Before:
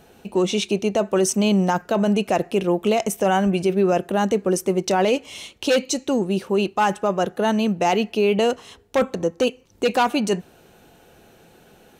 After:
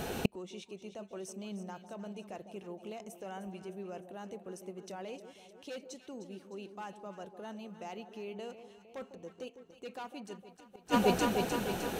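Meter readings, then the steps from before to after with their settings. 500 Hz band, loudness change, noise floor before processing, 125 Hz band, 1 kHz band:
−19.0 dB, −18.5 dB, −53 dBFS, −17.0 dB, −16.5 dB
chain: delay that swaps between a low-pass and a high-pass 153 ms, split 840 Hz, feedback 74%, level −9.5 dB
gate with flip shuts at −26 dBFS, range −38 dB
level +13 dB

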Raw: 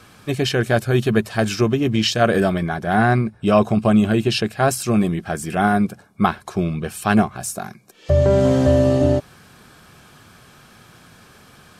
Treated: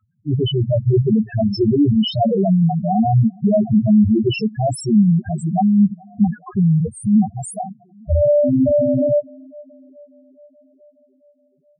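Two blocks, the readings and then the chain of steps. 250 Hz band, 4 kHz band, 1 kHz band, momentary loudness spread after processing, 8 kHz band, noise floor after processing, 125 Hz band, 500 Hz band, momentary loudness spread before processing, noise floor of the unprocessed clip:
+4.0 dB, −3.0 dB, −3.5 dB, 7 LU, −7.0 dB, −59 dBFS, +3.0 dB, 0.0 dB, 9 LU, −49 dBFS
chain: leveller curve on the samples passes 5
tape delay 423 ms, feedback 70%, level −24 dB, low-pass 2,400 Hz
spectral peaks only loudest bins 2
level −5 dB

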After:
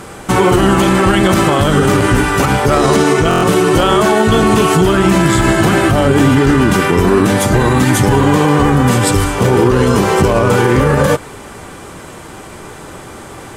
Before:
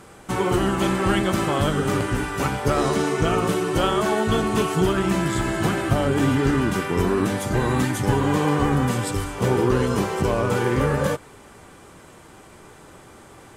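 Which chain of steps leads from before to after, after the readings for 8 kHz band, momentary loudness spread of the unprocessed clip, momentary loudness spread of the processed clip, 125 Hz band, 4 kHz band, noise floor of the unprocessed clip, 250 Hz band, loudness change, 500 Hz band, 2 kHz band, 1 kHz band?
+12.0 dB, 4 LU, 2 LU, +10.5 dB, +11.0 dB, −47 dBFS, +10.5 dB, +10.5 dB, +10.5 dB, +11.5 dB, +11.0 dB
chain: boost into a limiter +15.5 dB
buffer that repeats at 0:03.29, samples 1,024, times 5
level −1 dB

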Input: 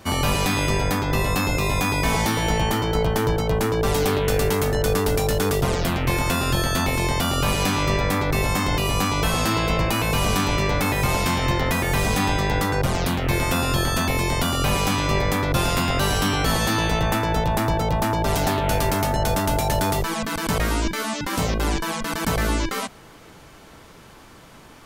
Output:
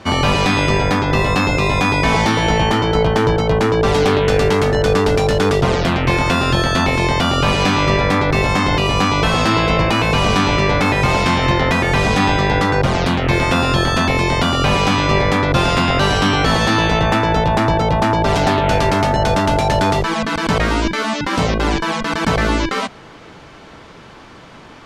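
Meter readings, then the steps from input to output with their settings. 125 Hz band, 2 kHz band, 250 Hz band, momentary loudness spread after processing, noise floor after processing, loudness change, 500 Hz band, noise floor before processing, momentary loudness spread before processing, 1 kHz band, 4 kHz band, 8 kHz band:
+5.5 dB, +7.5 dB, +7.0 dB, 3 LU, −40 dBFS, +6.5 dB, +7.5 dB, −46 dBFS, 2 LU, +7.5 dB, +6.0 dB, −1.5 dB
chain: low-pass filter 4,700 Hz 12 dB per octave
low-shelf EQ 70 Hz −7 dB
level +7.5 dB

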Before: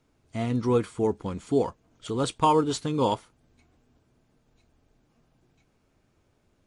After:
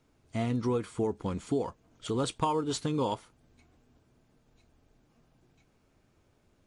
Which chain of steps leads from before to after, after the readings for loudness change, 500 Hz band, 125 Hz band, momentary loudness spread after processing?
−5.5 dB, −6.0 dB, −3.5 dB, 10 LU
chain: downward compressor 6 to 1, threshold −26 dBFS, peak gain reduction 9 dB

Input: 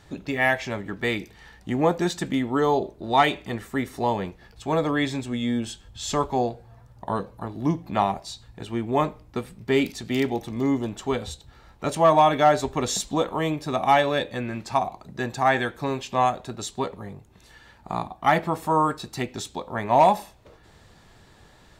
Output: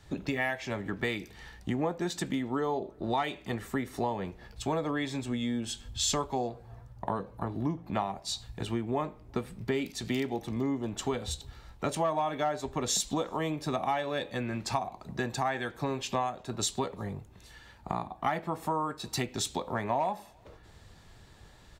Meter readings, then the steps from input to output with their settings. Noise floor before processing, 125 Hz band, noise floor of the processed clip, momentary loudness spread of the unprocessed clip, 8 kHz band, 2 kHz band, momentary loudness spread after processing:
−54 dBFS, −5.5 dB, −55 dBFS, 13 LU, 0.0 dB, −9.0 dB, 8 LU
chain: downward compressor 6 to 1, threshold −33 dBFS, peak gain reduction 19 dB
slap from a distant wall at 61 metres, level −29 dB
multiband upward and downward expander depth 40%
level +4 dB

